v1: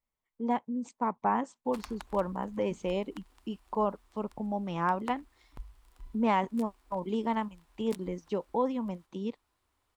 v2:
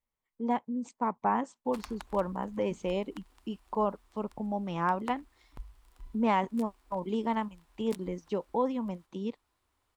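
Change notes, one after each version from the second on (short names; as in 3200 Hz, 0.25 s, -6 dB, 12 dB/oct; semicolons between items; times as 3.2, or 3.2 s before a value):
none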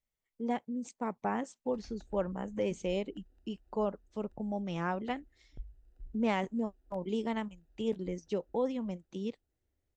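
background: add running mean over 40 samples; master: add fifteen-band EQ 250 Hz -3 dB, 1000 Hz -11 dB, 6300 Hz +4 dB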